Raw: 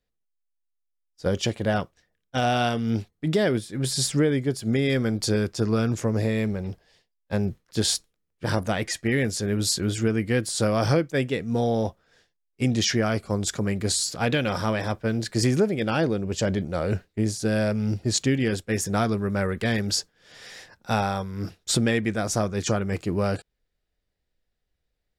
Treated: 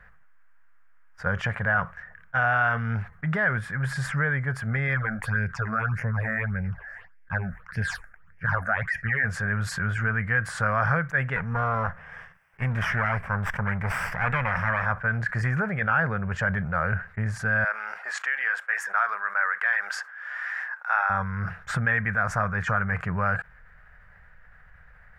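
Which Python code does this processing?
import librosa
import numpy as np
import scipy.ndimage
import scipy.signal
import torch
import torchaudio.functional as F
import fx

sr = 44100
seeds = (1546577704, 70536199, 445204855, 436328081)

y = fx.phaser_stages(x, sr, stages=8, low_hz=120.0, high_hz=1200.0, hz=1.7, feedback_pct=25, at=(4.94, 9.23), fade=0.02)
y = fx.lower_of_two(y, sr, delay_ms=0.36, at=(11.36, 14.86))
y = fx.bessel_highpass(y, sr, hz=900.0, order=4, at=(17.64, 21.1))
y = fx.curve_eq(y, sr, hz=(170.0, 310.0, 490.0, 1600.0, 3800.0), db=(0, -23, -8, 15, -22))
y = fx.env_flatten(y, sr, amount_pct=50)
y = y * 10.0 ** (-4.5 / 20.0)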